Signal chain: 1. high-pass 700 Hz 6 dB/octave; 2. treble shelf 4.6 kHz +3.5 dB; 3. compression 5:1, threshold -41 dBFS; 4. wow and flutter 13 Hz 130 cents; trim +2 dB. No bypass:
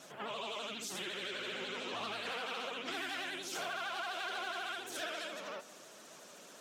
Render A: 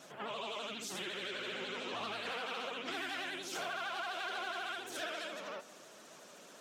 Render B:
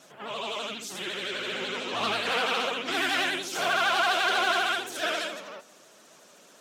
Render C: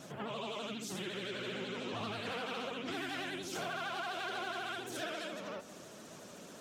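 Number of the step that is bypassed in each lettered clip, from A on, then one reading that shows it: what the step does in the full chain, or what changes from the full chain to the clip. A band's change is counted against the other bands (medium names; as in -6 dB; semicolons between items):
2, 8 kHz band -2.0 dB; 3, mean gain reduction 8.5 dB; 1, 125 Hz band +11.5 dB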